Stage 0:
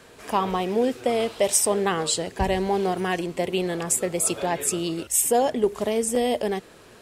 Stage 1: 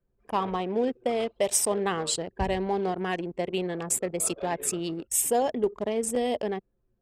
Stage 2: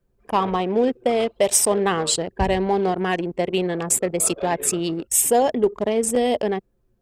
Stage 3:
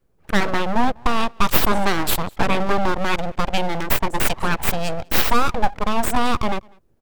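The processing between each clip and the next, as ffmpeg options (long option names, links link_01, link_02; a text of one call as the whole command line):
ffmpeg -i in.wav -af "anlmdn=39.8,volume=-4dB" out.wav
ffmpeg -i in.wav -af "acontrast=88" out.wav
ffmpeg -i in.wav -filter_complex "[0:a]asplit=2[link_01][link_02];[link_02]adelay=198.3,volume=-28dB,highshelf=frequency=4000:gain=-4.46[link_03];[link_01][link_03]amix=inputs=2:normalize=0,aeval=exprs='abs(val(0))':channel_layout=same,volume=4dB" out.wav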